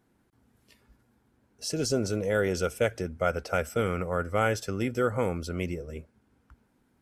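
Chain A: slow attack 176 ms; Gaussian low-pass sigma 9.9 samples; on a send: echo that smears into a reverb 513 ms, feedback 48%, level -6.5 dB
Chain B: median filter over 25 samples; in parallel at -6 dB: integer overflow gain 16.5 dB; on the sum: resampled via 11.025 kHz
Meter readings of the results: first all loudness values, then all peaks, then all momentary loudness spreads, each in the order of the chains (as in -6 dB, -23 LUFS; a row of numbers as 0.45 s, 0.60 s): -34.0 LUFS, -27.0 LUFS; -17.0 dBFS, -13.0 dBFS; 13 LU, 7 LU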